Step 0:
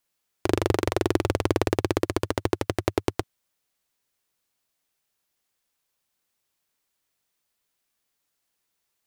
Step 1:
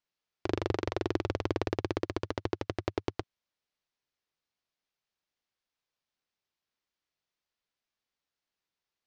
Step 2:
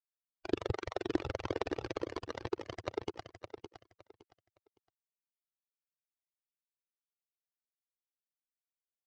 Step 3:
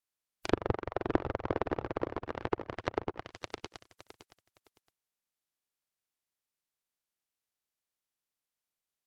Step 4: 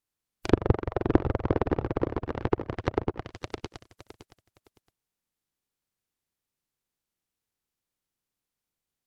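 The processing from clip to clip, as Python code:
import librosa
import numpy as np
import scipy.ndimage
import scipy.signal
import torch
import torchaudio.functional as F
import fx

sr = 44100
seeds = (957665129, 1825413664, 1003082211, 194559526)

y1 = scipy.signal.sosfilt(scipy.signal.butter(4, 5700.0, 'lowpass', fs=sr, output='sos'), x)
y1 = y1 * 10.0 ** (-8.0 / 20.0)
y2 = fx.bin_expand(y1, sr, power=3.0)
y2 = fx.echo_feedback(y2, sr, ms=563, feedback_pct=23, wet_db=-9)
y2 = y2 * 10.0 ** (2.5 / 20.0)
y3 = fx.spec_flatten(y2, sr, power=0.48)
y3 = fx.env_lowpass_down(y3, sr, base_hz=1100.0, full_db=-37.5)
y3 = y3 * 10.0 ** (5.5 / 20.0)
y4 = fx.low_shelf(y3, sr, hz=400.0, db=10.5)
y4 = fx.notch(y4, sr, hz=630.0, q=12.0)
y4 = y4 * 10.0 ** (1.5 / 20.0)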